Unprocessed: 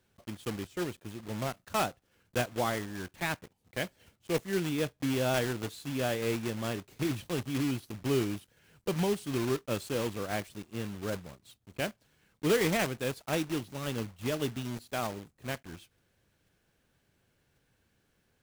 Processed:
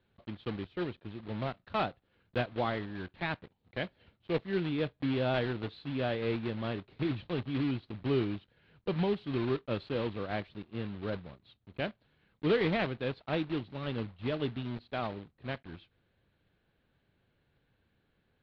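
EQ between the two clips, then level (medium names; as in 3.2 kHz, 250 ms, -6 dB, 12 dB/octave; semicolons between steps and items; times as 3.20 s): resonant low-pass 4.1 kHz, resonance Q 3.6; distance through air 460 m; 0.0 dB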